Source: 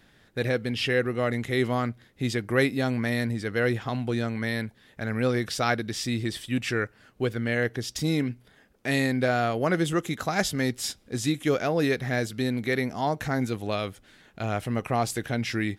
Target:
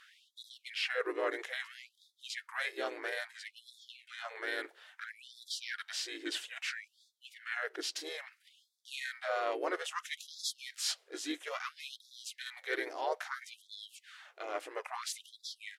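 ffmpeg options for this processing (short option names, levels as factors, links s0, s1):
-filter_complex "[0:a]asplit=2[s0][s1];[s1]asetrate=37084,aresample=44100,atempo=1.18921,volume=0.794[s2];[s0][s2]amix=inputs=2:normalize=0,asubboost=boost=6.5:cutoff=90,areverse,acompressor=threshold=0.0316:ratio=5,areverse,highshelf=f=9600:g=-9,afftfilt=real='re*gte(b*sr/1024,260*pow(3400/260,0.5+0.5*sin(2*PI*0.6*pts/sr)))':imag='im*gte(b*sr/1024,260*pow(3400/260,0.5+0.5*sin(2*PI*0.6*pts/sr)))':win_size=1024:overlap=0.75,volume=1.12"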